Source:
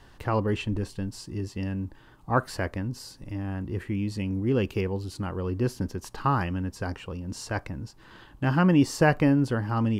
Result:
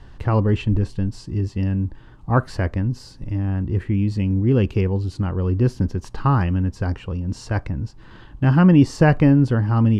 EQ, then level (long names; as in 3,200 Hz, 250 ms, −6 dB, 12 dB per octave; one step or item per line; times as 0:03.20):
high-frequency loss of the air 56 metres
low-shelf EQ 200 Hz +11 dB
+2.5 dB